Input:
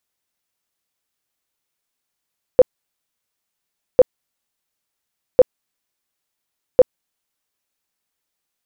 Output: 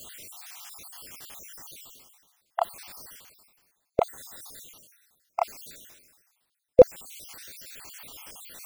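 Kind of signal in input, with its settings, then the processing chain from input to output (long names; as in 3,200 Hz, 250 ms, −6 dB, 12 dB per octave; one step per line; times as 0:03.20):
tone bursts 507 Hz, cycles 14, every 1.40 s, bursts 4, −3.5 dBFS
time-frequency cells dropped at random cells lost 59%
reversed playback
upward compression, threshold −15 dBFS
reversed playback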